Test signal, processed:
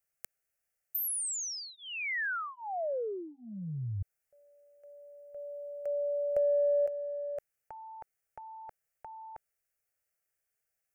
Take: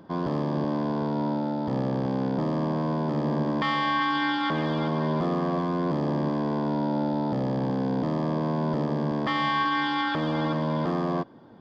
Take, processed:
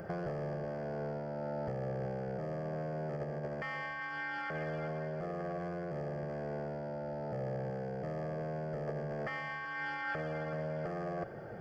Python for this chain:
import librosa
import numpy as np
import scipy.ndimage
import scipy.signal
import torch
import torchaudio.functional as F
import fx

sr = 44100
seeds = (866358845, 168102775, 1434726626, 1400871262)

y = fx.over_compress(x, sr, threshold_db=-35.0, ratio=-1.0)
y = fx.fixed_phaser(y, sr, hz=1000.0, stages=6)
y = F.gain(torch.from_numpy(y), 2.0).numpy()